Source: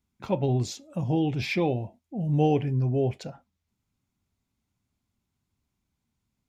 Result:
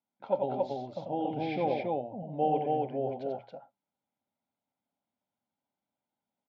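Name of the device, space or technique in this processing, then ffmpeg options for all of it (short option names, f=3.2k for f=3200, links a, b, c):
phone earpiece: -filter_complex "[0:a]highpass=340,equalizer=f=370:t=q:w=4:g=-7,equalizer=f=580:t=q:w=4:g=7,equalizer=f=820:t=q:w=4:g=6,equalizer=f=1.2k:t=q:w=4:g=-4,equalizer=f=1.8k:t=q:w=4:g=-9,equalizer=f=2.6k:t=q:w=4:g=-10,lowpass=f=3.1k:w=0.5412,lowpass=f=3.1k:w=1.3066,bandreject=f=60:t=h:w=6,bandreject=f=120:t=h:w=6,aecho=1:1:90.38|277:0.562|0.794,asettb=1/sr,asplit=3[a][b][c];[a]atrim=end=1.304[d];[b]atrim=start=1.3:end=2.23,asetpts=PTS-STARTPTS,afade=t=in:d=0.004:c=qsin,afade=t=out:st=0.926:d=0.004:c=qsin,bass=f=250:g=6,treble=f=4k:g=0[e];[c]atrim=start=2.226[f];[d][e]acrossfade=d=0.004:c1=hsin:c2=qsin[g];[g][f]acrossfade=d=0.004:c1=qsin:c2=hsin,bandreject=f=1.1k:w=8.5,volume=-4.5dB"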